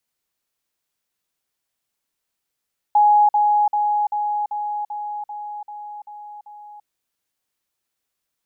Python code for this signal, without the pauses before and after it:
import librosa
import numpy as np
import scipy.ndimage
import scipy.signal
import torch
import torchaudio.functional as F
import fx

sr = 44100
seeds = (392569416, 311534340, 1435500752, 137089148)

y = fx.level_ladder(sr, hz=834.0, from_db=-10.5, step_db=-3.0, steps=10, dwell_s=0.34, gap_s=0.05)